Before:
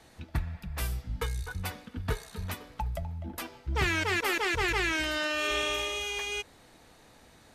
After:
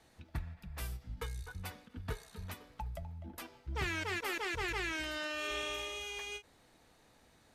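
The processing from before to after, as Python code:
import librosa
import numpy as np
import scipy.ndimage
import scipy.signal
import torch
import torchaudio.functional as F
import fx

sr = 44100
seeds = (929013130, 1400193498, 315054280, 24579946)

y = fx.end_taper(x, sr, db_per_s=310.0)
y = y * librosa.db_to_amplitude(-8.5)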